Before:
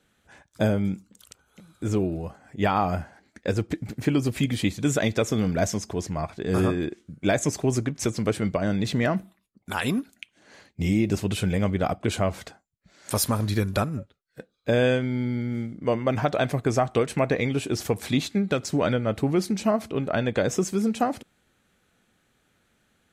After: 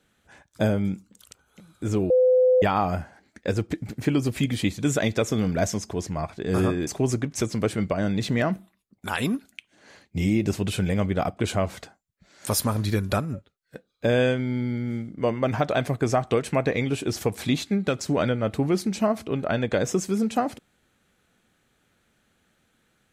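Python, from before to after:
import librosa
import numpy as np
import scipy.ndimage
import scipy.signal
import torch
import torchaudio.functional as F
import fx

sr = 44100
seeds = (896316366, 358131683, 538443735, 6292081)

y = fx.edit(x, sr, fx.bleep(start_s=2.1, length_s=0.52, hz=508.0, db=-14.5),
    fx.cut(start_s=6.87, length_s=0.64), tone=tone)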